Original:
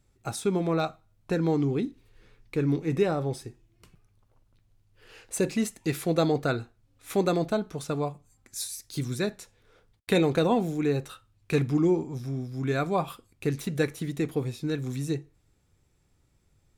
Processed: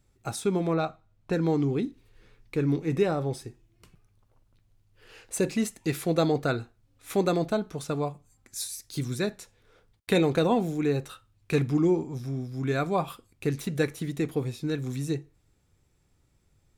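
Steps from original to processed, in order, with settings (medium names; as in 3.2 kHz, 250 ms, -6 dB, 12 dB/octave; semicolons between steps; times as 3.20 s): 0.73–1.32 s: treble shelf 4.5 kHz -> 8.4 kHz -11.5 dB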